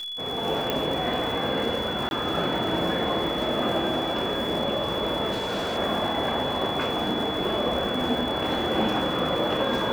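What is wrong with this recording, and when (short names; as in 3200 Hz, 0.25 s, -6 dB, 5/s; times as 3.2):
crackle 140/s -32 dBFS
tone 3400 Hz -31 dBFS
0.7 pop -11 dBFS
2.09–2.11 gap 21 ms
5.31–5.78 clipped -24.5 dBFS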